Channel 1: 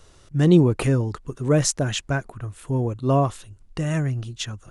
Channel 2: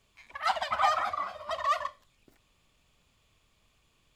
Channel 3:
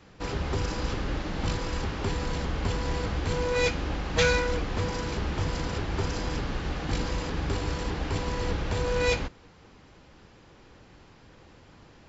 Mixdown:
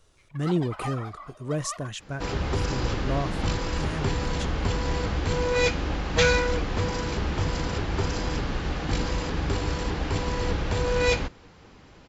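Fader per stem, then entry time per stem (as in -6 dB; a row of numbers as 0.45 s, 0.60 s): -10.0 dB, -10.0 dB, +2.5 dB; 0.00 s, 0.00 s, 2.00 s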